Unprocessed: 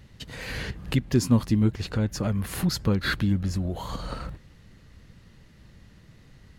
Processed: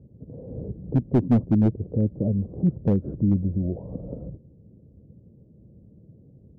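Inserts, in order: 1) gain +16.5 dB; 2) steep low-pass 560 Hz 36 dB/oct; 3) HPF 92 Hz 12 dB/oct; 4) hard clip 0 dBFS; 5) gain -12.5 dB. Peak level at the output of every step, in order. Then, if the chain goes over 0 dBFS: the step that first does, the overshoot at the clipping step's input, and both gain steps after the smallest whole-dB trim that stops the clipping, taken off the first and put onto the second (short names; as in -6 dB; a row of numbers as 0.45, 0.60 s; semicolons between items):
+8.0, +8.0, +7.5, 0.0, -12.5 dBFS; step 1, 7.5 dB; step 1 +8.5 dB, step 5 -4.5 dB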